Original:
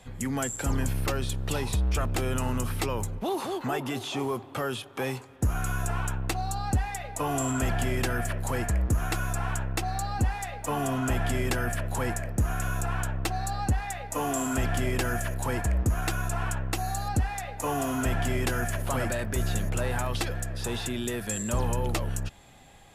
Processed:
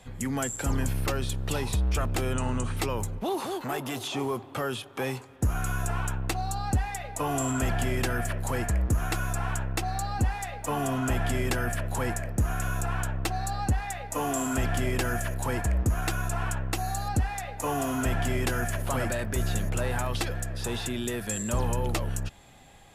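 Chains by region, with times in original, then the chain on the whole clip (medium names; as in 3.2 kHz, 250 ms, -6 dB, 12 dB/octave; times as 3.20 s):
2.33–2.77 s: Chebyshev low-pass 9.2 kHz, order 5 + band-stop 5.2 kHz, Q 5.6
3.46–4.08 s: treble shelf 5.5 kHz +7.5 dB + transformer saturation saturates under 720 Hz
whole clip: none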